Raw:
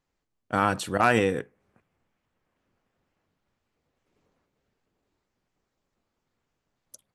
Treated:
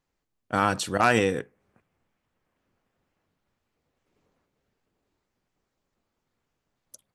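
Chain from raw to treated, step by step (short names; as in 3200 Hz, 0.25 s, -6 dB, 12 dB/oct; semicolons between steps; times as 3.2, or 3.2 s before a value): dynamic EQ 5500 Hz, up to +6 dB, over -45 dBFS, Q 1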